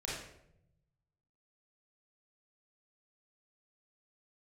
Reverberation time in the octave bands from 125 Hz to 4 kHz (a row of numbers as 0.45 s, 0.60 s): 1.7 s, 1.2 s, 0.90 s, 0.65 s, 0.65 s, 0.50 s